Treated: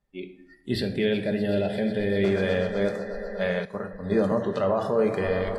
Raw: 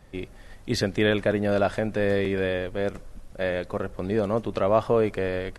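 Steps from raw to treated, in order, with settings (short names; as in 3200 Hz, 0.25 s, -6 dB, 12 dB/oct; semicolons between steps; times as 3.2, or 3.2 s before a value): swelling echo 0.124 s, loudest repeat 5, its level -18 dB; limiter -15 dBFS, peak gain reduction 6.5 dB; spectral noise reduction 26 dB; 0.69–2.24 fixed phaser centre 2800 Hz, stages 4; reverb RT60 0.70 s, pre-delay 5 ms, DRR 4.5 dB; 3.65–4.32 three-band expander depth 100%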